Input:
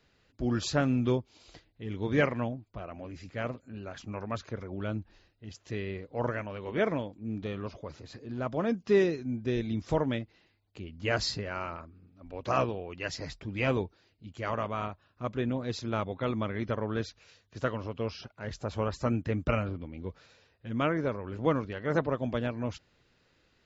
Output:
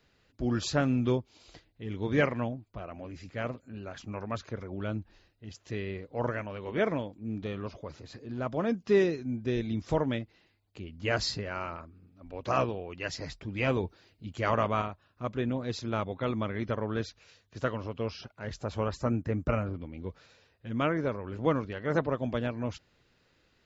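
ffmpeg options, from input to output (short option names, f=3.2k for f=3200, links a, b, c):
-filter_complex "[0:a]asettb=1/sr,asplit=3[a][b][c];[a]atrim=end=13.834[d];[b]atrim=start=13.83:end=14.82,asetpts=PTS-STARTPTS,afade=t=in:d=0.004:c=qsin,afade=t=out:st=0.986:d=0.004:c=qsin,acontrast=29[e];[c]atrim=start=14.816[f];[d][e]acrossfade=d=0.004:c1=hsin:c2=qsin[g];[g][f]acrossfade=d=0.004:c1=qsin:c2=hsin,asettb=1/sr,asplit=3[h][i][j];[h]atrim=end=19.014[k];[i]atrim=start=19.01:end=19.74,asetpts=PTS-STARTPTS,afade=t=in:d=0.004:c=qsin,afade=t=out:st=0.726:d=0.004:c=qsin,equalizer=f=3.4k:t=o:w=1.1:g=-9.5[l];[j]atrim=start=19.736[m];[k][l]acrossfade=d=0.004:c1=hsin:c2=qsin[n];[n][m]acrossfade=d=0.004:c1=qsin:c2=hsin"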